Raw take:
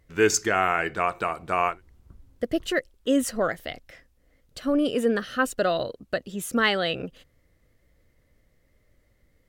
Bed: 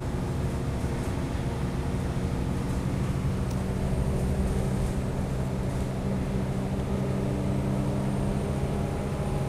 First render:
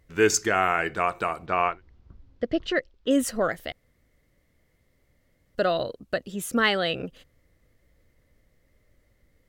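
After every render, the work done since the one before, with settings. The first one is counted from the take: 1.46–3.11 s: low-pass 5.2 kHz 24 dB/octave; 3.72–5.55 s: room tone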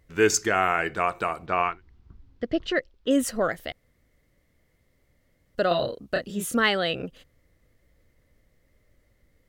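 1.62–2.48 s: peaking EQ 570 Hz -14 dB -> -7 dB 0.41 oct; 5.68–6.56 s: doubling 29 ms -2.5 dB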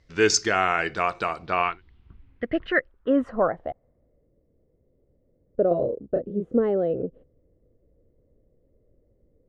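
low-pass sweep 5.1 kHz -> 460 Hz, 1.39–4.34 s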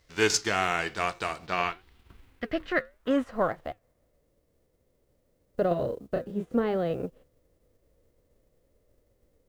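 formants flattened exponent 0.6; flange 0.88 Hz, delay 1.6 ms, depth 5.2 ms, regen -85%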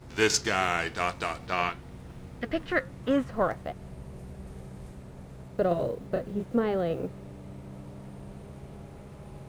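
add bed -16 dB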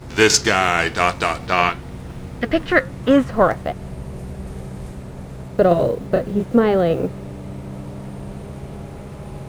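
trim +11.5 dB; peak limiter -2 dBFS, peak gain reduction 3 dB

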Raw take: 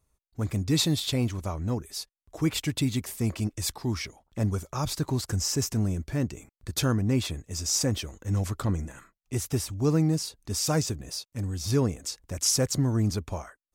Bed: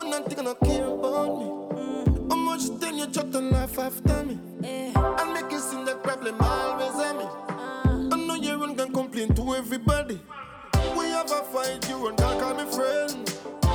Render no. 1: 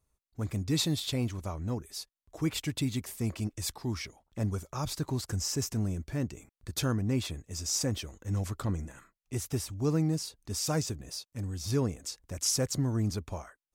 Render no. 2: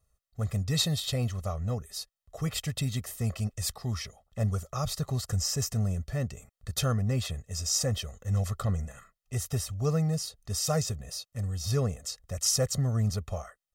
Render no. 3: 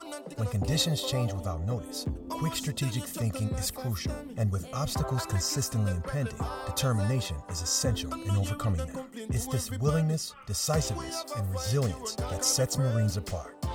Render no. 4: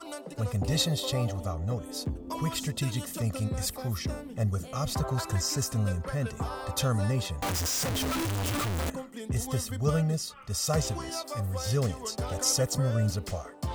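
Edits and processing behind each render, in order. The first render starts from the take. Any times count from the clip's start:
trim -4.5 dB
band-stop 2.4 kHz, Q 12; comb 1.6 ms, depth 86%
add bed -11.5 dB
7.42–8.90 s: one-bit comparator

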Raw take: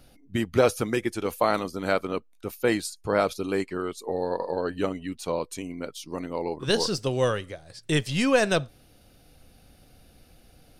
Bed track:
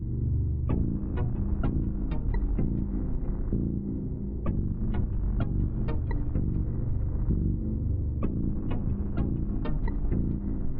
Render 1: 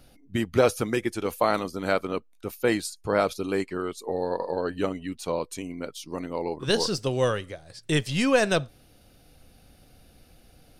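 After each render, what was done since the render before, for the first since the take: no audible change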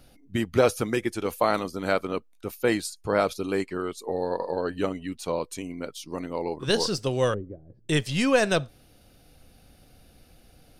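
7.34–7.89 s: resonant low-pass 320 Hz, resonance Q 1.8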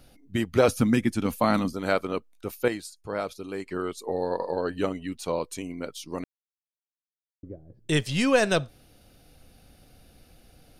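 0.68–1.73 s: resonant low shelf 310 Hz +6 dB, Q 3; 2.68–3.66 s: gain -7.5 dB; 6.24–7.43 s: mute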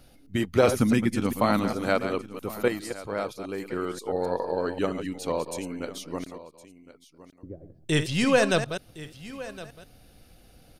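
chunks repeated in reverse 133 ms, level -9 dB; delay 1063 ms -17 dB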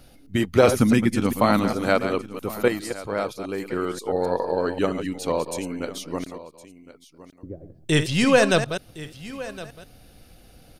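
trim +4 dB

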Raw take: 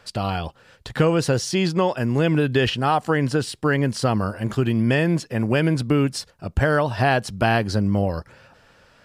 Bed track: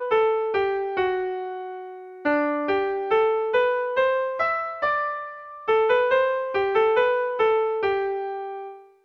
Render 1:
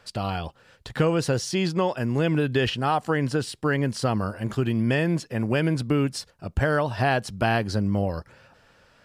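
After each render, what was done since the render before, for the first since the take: trim -3.5 dB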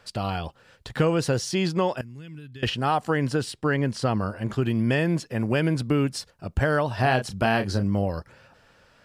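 2.01–2.63 s: amplifier tone stack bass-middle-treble 6-0-2; 3.52–4.62 s: treble shelf 8.8 kHz -9 dB; 7.00–7.84 s: doubling 31 ms -8 dB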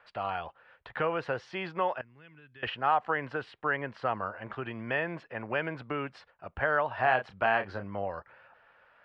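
low-pass 3.7 kHz 12 dB/octave; three-band isolator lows -18 dB, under 580 Hz, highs -23 dB, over 2.7 kHz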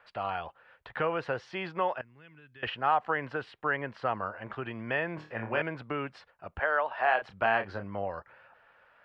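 5.15–5.62 s: flutter echo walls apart 4.5 m, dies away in 0.32 s; 6.60–7.22 s: band-pass 430–5200 Hz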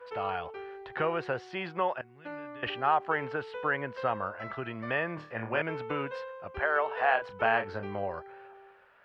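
add bed track -19.5 dB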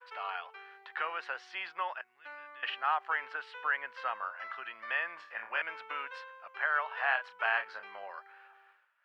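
expander -52 dBFS; Chebyshev high-pass 1.3 kHz, order 2

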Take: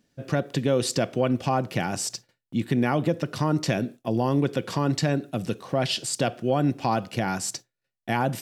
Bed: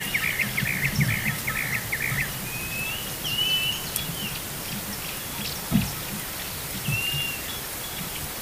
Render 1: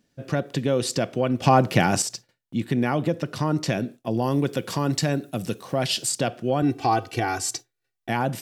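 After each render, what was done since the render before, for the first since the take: 1.42–2.02 s: gain +7.5 dB; 4.22–6.12 s: treble shelf 7.9 kHz +11.5 dB; 6.62–8.09 s: comb 2.6 ms, depth 92%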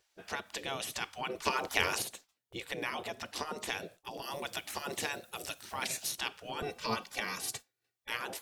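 dynamic bell 1.5 kHz, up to -5 dB, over -42 dBFS, Q 1.7; spectral gate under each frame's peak -15 dB weak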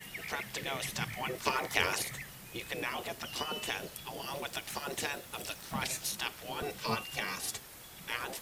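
add bed -18 dB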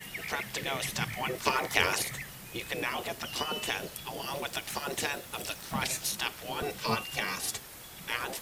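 trim +3.5 dB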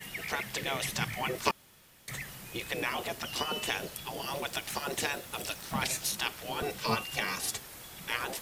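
1.51–2.08 s: room tone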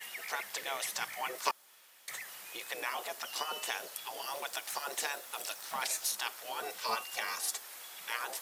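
high-pass 700 Hz 12 dB/octave; dynamic bell 2.7 kHz, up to -6 dB, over -46 dBFS, Q 1.1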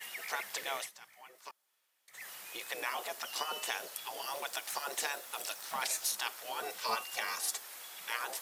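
0.78–2.25 s: dip -17.5 dB, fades 0.12 s

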